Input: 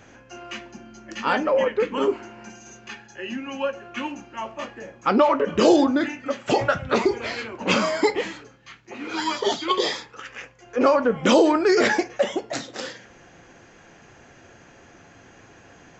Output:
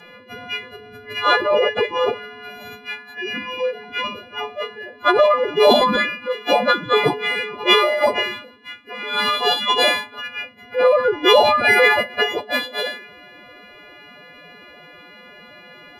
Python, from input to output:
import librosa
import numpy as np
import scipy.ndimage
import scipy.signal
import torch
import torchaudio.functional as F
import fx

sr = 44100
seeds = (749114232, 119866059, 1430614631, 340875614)

y = fx.freq_snap(x, sr, grid_st=3)
y = fx.pitch_keep_formants(y, sr, semitones=11.5)
y = y * librosa.db_to_amplitude(3.0)